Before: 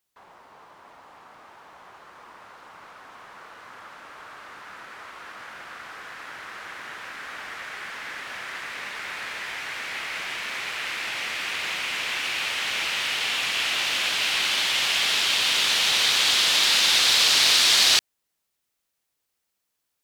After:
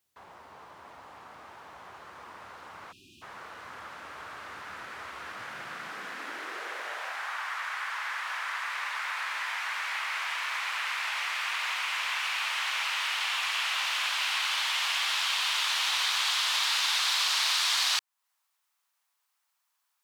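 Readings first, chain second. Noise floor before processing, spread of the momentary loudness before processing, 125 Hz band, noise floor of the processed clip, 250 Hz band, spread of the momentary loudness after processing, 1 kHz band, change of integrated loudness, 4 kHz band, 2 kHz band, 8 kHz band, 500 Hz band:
-79 dBFS, 22 LU, under -10 dB, -78 dBFS, under -10 dB, 21 LU, 0.0 dB, -7.5 dB, -7.5 dB, -4.0 dB, -8.5 dB, -8.5 dB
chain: spectral selection erased 2.92–3.22 s, 400–2400 Hz; high-pass sweep 70 Hz -> 1 kHz, 5.15–7.41 s; compression 2:1, threshold -32 dBFS, peak gain reduction 10 dB

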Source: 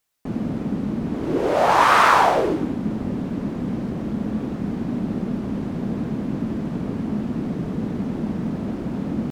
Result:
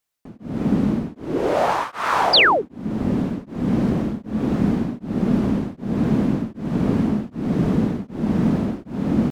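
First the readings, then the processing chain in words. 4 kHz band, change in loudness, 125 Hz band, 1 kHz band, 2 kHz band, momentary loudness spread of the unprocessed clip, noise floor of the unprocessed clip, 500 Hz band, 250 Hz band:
+10.0 dB, +1.5 dB, +4.0 dB, -3.5 dB, +1.5 dB, 12 LU, -30 dBFS, 0.0 dB, +3.5 dB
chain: level rider gain up to 13 dB; painted sound fall, 2.33–2.62 s, 360–5200 Hz -8 dBFS; tremolo of two beating tones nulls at 1.3 Hz; trim -4 dB

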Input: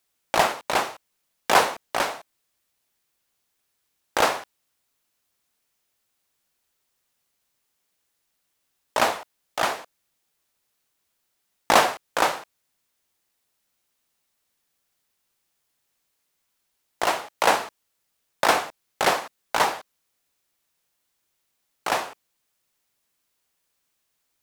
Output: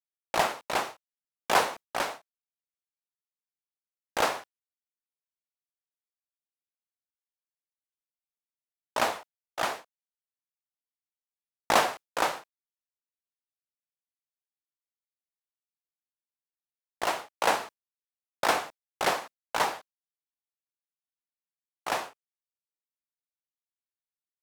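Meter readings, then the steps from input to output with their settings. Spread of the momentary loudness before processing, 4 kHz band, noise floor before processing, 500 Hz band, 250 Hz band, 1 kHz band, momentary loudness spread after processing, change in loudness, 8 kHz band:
15 LU, -5.5 dB, -75 dBFS, -5.5 dB, -5.5 dB, -5.5 dB, 17 LU, -5.5 dB, -5.5 dB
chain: expander -29 dBFS; trim -5.5 dB

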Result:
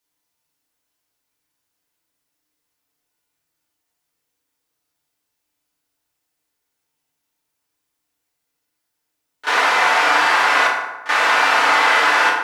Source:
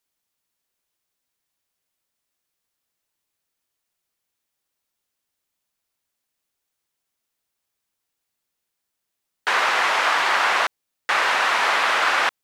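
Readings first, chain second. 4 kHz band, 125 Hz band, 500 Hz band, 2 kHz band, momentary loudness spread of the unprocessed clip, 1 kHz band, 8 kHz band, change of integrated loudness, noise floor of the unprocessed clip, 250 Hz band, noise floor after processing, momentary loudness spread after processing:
+3.0 dB, no reading, +5.0 dB, +5.0 dB, 6 LU, +5.0 dB, +3.5 dB, +4.5 dB, -81 dBFS, +7.5 dB, -77 dBFS, 7 LU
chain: pre-echo 33 ms -15 dB; FDN reverb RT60 1.1 s, low-frequency decay 0.9×, high-frequency decay 0.55×, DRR -4 dB; trim -1 dB

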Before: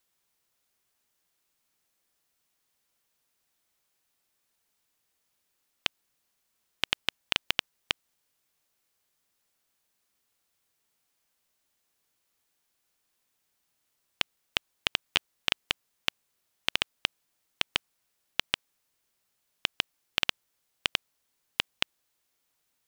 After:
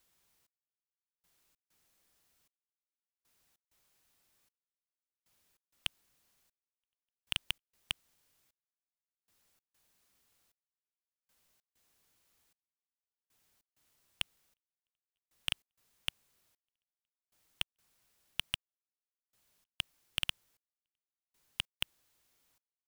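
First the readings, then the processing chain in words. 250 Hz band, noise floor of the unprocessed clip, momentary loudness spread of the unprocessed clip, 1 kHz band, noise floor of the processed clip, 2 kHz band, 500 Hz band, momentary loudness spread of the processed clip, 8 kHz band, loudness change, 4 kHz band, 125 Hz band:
-12.0 dB, -78 dBFS, 5 LU, -15.0 dB, under -85 dBFS, -11.5 dB, -18.5 dB, 5 LU, -5.5 dB, -7.5 dB, -9.0 dB, -5.0 dB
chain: bass shelf 170 Hz +7 dB; saturation -19 dBFS, distortion -4 dB; trance gate "xxx.....xx.xx" 97 bpm -60 dB; trim +2.5 dB

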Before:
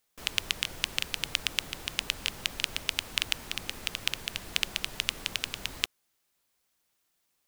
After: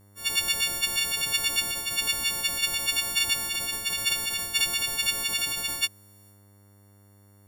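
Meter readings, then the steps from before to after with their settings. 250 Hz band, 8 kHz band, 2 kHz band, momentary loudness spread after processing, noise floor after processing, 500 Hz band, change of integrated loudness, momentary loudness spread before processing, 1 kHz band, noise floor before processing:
+2.0 dB, +11.0 dB, +5.0 dB, 3 LU, -56 dBFS, +3.5 dB, +7.0 dB, 4 LU, +5.5 dB, -76 dBFS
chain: partials quantised in pitch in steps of 4 st; transient shaper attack -2 dB, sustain +8 dB; mains buzz 100 Hz, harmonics 22, -53 dBFS -7 dB/octave; trim -3.5 dB

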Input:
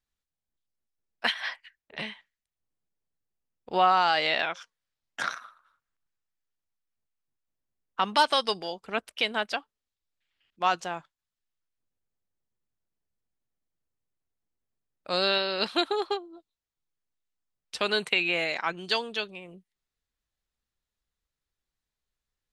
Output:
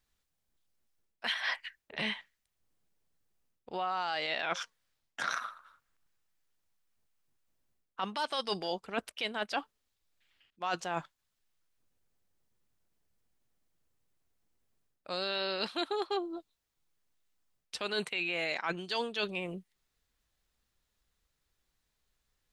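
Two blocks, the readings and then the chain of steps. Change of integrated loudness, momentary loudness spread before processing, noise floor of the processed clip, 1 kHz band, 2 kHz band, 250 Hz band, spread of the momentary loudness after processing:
-7.5 dB, 16 LU, -83 dBFS, -9.0 dB, -6.0 dB, -4.0 dB, 10 LU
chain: peak limiter -16 dBFS, peak gain reduction 7.5 dB; reverse; compression 10:1, threshold -38 dBFS, peak gain reduction 17.5 dB; reverse; trim +7.5 dB

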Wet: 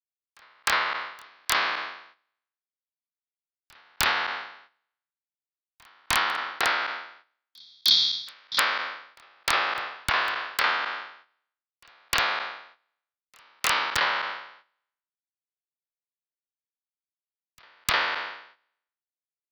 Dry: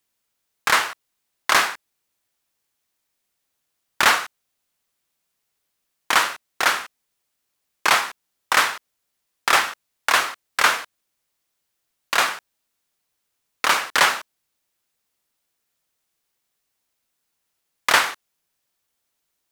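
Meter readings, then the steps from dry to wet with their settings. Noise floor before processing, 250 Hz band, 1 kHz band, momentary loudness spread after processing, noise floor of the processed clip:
-77 dBFS, -6.0 dB, -5.5 dB, 14 LU, under -85 dBFS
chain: spectral sustain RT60 1.00 s; steep low-pass 4.7 kHz 48 dB/octave; time-frequency box 7.68–8.58 s, 300–3200 Hz -25 dB; gate -42 dBFS, range -10 dB; bass shelf 180 Hz -8 dB; level rider gain up to 15.5 dB; in parallel at -1.5 dB: peak limiter -7.5 dBFS, peak gain reduction 7 dB; on the sum: compression 16:1, threshold -13 dBFS, peak gain reduction 9 dB; integer overflow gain 4 dB; on a send: reverse echo 306 ms -15.5 dB; on the sum: three bands expanded up and down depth 100%; trim -9.5 dB

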